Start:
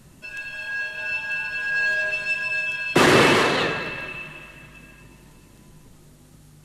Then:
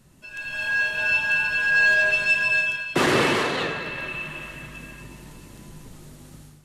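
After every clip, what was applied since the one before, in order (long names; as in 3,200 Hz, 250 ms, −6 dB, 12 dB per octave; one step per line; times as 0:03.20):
automatic gain control gain up to 12.5 dB
level −6.5 dB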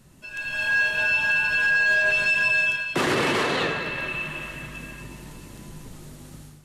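brickwall limiter −16 dBFS, peak gain reduction 8.5 dB
level +2 dB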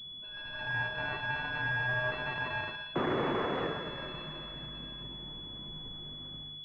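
switching amplifier with a slow clock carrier 3,400 Hz
level −7 dB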